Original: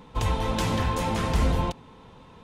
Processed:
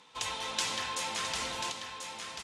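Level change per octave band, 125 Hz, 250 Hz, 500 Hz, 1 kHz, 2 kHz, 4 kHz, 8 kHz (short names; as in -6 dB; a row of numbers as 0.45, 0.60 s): -27.0, -19.5, -13.0, -7.5, -1.5, +2.5, +4.5 dB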